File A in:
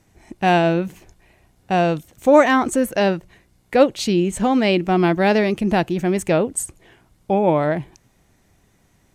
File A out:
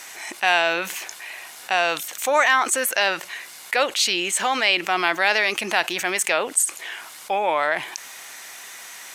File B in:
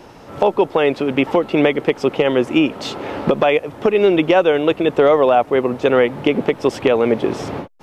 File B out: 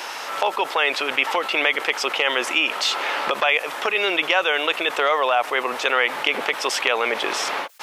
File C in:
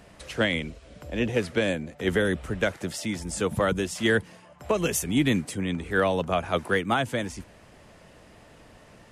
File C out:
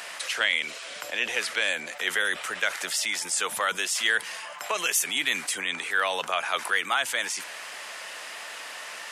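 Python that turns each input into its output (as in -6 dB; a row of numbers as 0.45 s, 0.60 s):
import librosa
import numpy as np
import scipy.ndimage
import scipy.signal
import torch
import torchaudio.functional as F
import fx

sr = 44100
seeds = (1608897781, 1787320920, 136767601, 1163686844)

y = scipy.signal.sosfilt(scipy.signal.butter(2, 1300.0, 'highpass', fs=sr, output='sos'), x)
y = fx.env_flatten(y, sr, amount_pct=50)
y = F.gain(torch.from_numpy(y), 3.0).numpy()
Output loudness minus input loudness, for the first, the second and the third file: -2.0 LU, -4.0 LU, -0.5 LU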